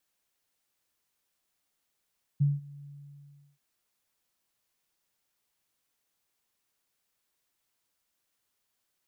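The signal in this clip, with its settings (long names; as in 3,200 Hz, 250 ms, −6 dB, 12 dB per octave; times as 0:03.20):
note with an ADSR envelope sine 143 Hz, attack 16 ms, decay 187 ms, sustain −23.5 dB, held 0.45 s, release 730 ms −19.5 dBFS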